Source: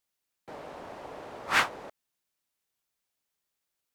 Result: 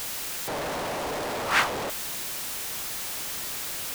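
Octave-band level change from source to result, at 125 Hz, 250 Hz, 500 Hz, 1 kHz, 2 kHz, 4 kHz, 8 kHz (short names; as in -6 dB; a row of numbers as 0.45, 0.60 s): +11.0, +9.5, +10.0, +5.5, +3.0, +7.5, +15.5 dB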